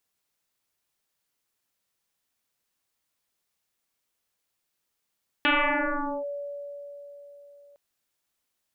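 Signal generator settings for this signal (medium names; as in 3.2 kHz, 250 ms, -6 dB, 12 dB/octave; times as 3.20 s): FM tone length 2.31 s, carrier 572 Hz, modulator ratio 0.51, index 8.7, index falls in 0.79 s linear, decay 4.11 s, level -18 dB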